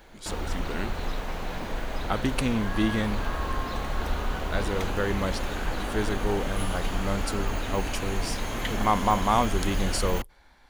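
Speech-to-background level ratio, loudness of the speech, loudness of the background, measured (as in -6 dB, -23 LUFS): 2.5 dB, -30.0 LUFS, -32.5 LUFS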